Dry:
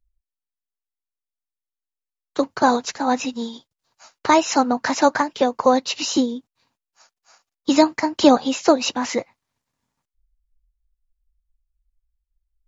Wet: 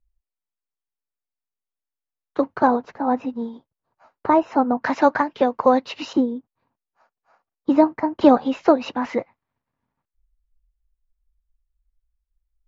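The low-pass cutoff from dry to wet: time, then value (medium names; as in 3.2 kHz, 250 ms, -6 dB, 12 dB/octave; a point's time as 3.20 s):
1.8 kHz
from 2.67 s 1.1 kHz
from 4.82 s 2.3 kHz
from 6.13 s 1.2 kHz
from 8.21 s 1.9 kHz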